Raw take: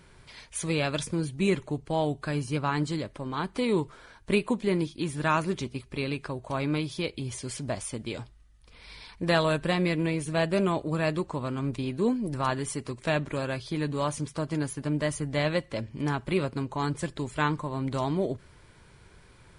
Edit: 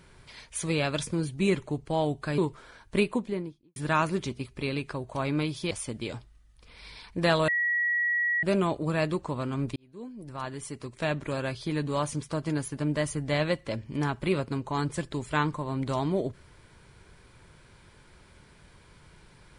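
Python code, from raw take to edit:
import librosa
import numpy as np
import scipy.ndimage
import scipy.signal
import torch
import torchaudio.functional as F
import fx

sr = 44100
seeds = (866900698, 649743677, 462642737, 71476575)

y = fx.studio_fade_out(x, sr, start_s=4.32, length_s=0.79)
y = fx.edit(y, sr, fx.cut(start_s=2.38, length_s=1.35),
    fx.cut(start_s=7.06, length_s=0.7),
    fx.bleep(start_s=9.53, length_s=0.95, hz=1920.0, db=-23.5),
    fx.fade_in_span(start_s=11.81, length_s=1.7), tone=tone)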